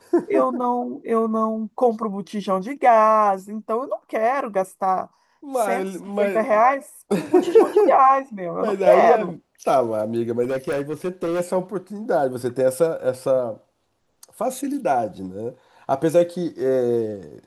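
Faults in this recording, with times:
0:10.44–0:11.41: clipping −20 dBFS

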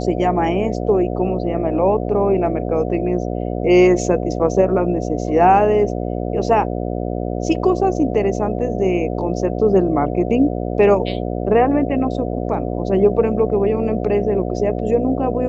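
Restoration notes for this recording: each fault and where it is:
mains buzz 60 Hz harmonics 12 −23 dBFS

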